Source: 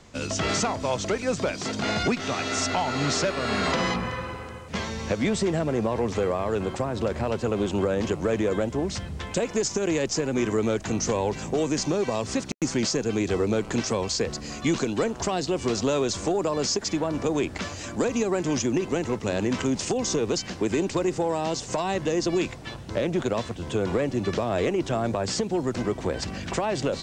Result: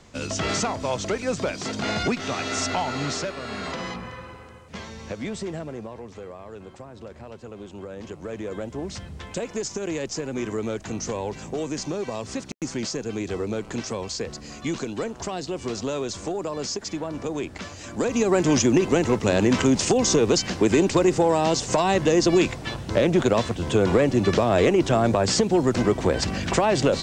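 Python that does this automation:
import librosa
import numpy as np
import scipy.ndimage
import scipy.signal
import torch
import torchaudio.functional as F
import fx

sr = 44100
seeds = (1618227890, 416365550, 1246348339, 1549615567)

y = fx.gain(x, sr, db=fx.line((2.82, 0.0), (3.48, -7.0), (5.55, -7.0), (6.06, -14.0), (7.74, -14.0), (8.91, -4.0), (17.79, -4.0), (18.37, 6.0)))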